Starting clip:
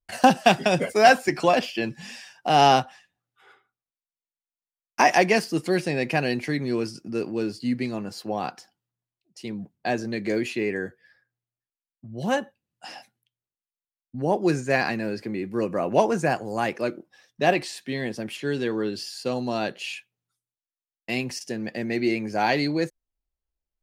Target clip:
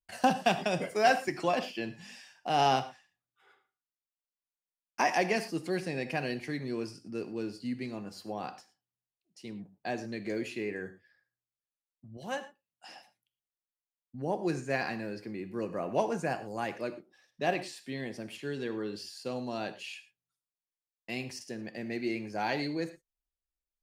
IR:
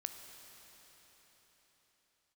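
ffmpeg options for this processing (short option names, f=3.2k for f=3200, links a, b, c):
-filter_complex "[0:a]asettb=1/sr,asplit=3[a][b][c];[a]atrim=end=12.174[d];[b]atrim=start=12.17:end=12.89,asetpts=PTS-STARTPTS,afade=t=in:d=0.004:c=qsin,afade=t=out:st=0.716:d=0.004:c=qsin,lowshelf=f=340:g=-10.5[e];[c]atrim=start=12.886[f];[d][e]acrossfade=d=0.004:c1=hsin:c2=qsin[g];[g][f]acrossfade=d=0.004:c1=qsin:c2=hsin[h];[1:a]atrim=start_sample=2205,afade=t=out:st=0.16:d=0.01,atrim=end_sample=7497,asetrate=40572,aresample=44100[i];[h][i]afir=irnorm=-1:irlink=0,volume=-7dB"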